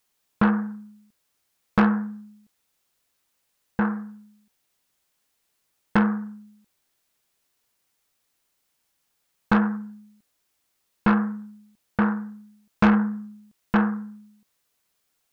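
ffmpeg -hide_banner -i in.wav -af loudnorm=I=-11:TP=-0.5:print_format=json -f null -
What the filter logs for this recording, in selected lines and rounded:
"input_i" : "-24.2",
"input_tp" : "-11.6",
"input_lra" : "5.9",
"input_thresh" : "-36.5",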